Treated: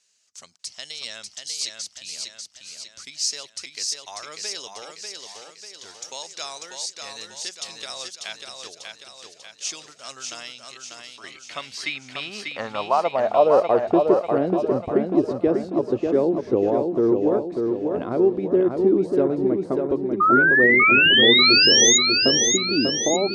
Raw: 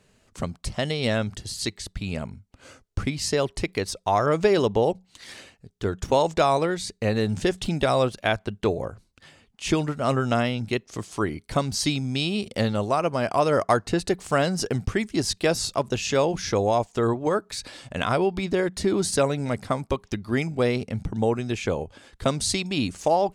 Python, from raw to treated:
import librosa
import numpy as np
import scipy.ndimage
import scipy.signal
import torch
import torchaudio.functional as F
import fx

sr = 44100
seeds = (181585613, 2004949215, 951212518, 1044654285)

p1 = fx.level_steps(x, sr, step_db=16, at=(10.65, 11.24))
p2 = fx.filter_sweep_bandpass(p1, sr, from_hz=5900.0, to_hz=340.0, start_s=10.6, end_s=14.09, q=2.5)
p3 = fx.spec_paint(p2, sr, seeds[0], shape='rise', start_s=20.2, length_s=1.78, low_hz=1200.0, high_hz=6900.0, level_db=-24.0)
p4 = p3 + fx.echo_feedback(p3, sr, ms=593, feedback_pct=52, wet_db=-4.5, dry=0)
y = F.gain(torch.from_numpy(p4), 7.5).numpy()